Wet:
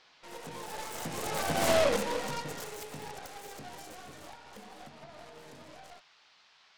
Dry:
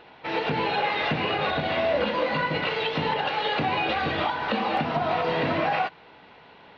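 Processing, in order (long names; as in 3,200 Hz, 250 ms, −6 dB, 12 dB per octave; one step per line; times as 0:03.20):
stylus tracing distortion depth 0.48 ms
source passing by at 0:01.72, 18 m/s, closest 3.2 metres
noise in a band 690–4,900 Hz −63 dBFS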